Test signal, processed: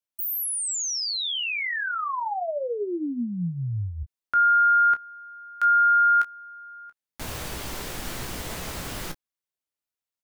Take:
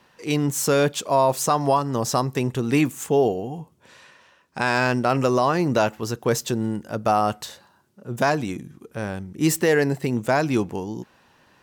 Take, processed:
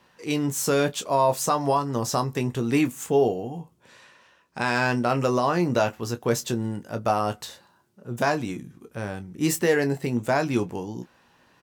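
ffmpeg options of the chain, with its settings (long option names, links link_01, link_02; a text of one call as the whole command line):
ffmpeg -i in.wav -af "aecho=1:1:17|29:0.335|0.211,volume=-3dB" out.wav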